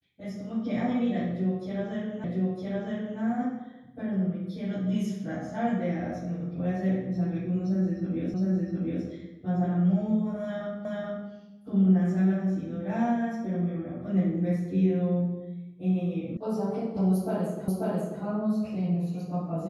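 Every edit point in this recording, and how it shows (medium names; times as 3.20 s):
2.24 s: repeat of the last 0.96 s
8.34 s: repeat of the last 0.71 s
10.85 s: repeat of the last 0.43 s
16.37 s: sound stops dead
17.68 s: repeat of the last 0.54 s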